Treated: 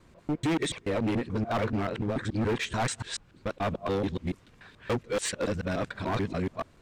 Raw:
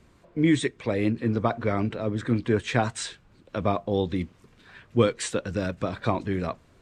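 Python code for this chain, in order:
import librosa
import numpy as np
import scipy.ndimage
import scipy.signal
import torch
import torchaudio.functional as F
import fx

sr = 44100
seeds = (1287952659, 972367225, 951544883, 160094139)

y = fx.local_reverse(x, sr, ms=144.0)
y = np.clip(y, -10.0 ** (-24.0 / 20.0), 10.0 ** (-24.0 / 20.0))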